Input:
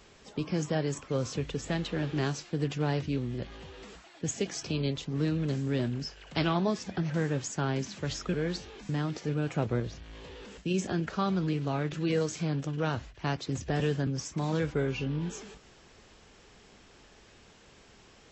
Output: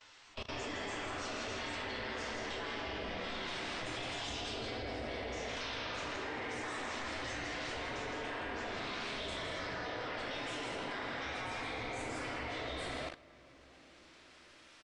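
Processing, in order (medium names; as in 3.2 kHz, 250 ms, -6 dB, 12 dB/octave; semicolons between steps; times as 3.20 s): gliding tape speed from 99% -> 148%; Doppler pass-by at 5.88 s, 17 m/s, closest 21 m; compression 8:1, threshold -46 dBFS, peak gain reduction 22 dB; delay 165 ms -5.5 dB; spectral gate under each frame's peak -15 dB weak; low-pass 4.5 kHz 12 dB/octave; hum notches 50/100/150/200/250 Hz; reverberation RT60 3.1 s, pre-delay 4 ms, DRR -10 dB; level held to a coarse grid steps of 19 dB; trim +16.5 dB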